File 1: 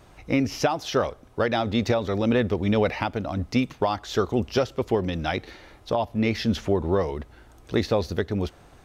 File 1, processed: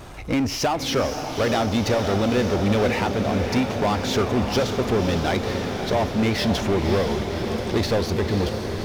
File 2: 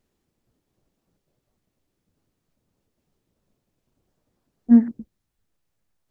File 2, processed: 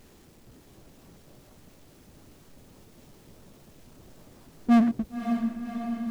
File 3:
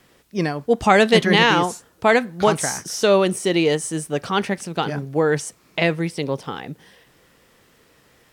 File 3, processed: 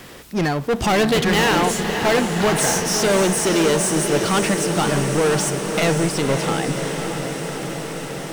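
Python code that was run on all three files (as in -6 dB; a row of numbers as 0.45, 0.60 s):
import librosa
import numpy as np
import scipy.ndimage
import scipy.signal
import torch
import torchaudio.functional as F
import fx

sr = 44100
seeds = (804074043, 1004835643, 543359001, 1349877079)

y = fx.power_curve(x, sr, exponent=0.7)
y = 10.0 ** (-15.0 / 20.0) * np.tanh(y / 10.0 ** (-15.0 / 20.0))
y = fx.echo_diffused(y, sr, ms=560, feedback_pct=76, wet_db=-7)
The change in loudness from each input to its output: +3.0, -9.0, +0.5 LU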